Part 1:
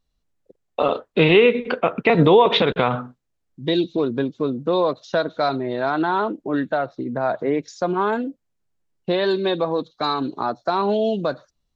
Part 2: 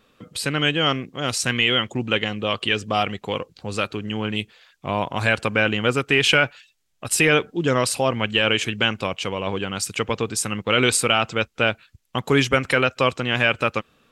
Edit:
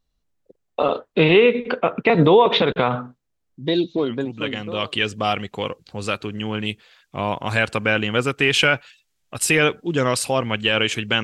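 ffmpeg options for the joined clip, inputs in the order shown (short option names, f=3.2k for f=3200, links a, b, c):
-filter_complex "[0:a]apad=whole_dur=11.23,atrim=end=11.23,atrim=end=4.94,asetpts=PTS-STARTPTS[a];[1:a]atrim=start=1.66:end=8.93,asetpts=PTS-STARTPTS[b];[a][b]acrossfade=d=0.98:c1=tri:c2=tri"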